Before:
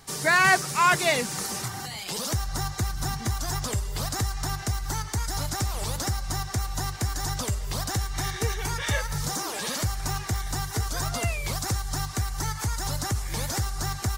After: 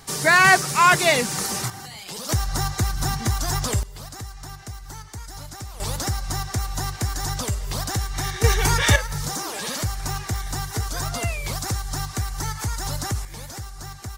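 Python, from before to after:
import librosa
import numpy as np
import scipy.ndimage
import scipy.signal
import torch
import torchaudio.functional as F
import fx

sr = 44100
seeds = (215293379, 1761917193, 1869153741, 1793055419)

y = fx.gain(x, sr, db=fx.steps((0.0, 5.0), (1.7, -2.5), (2.29, 5.0), (3.83, -8.0), (5.8, 2.5), (8.44, 10.0), (8.96, 1.5), (13.25, -7.0)))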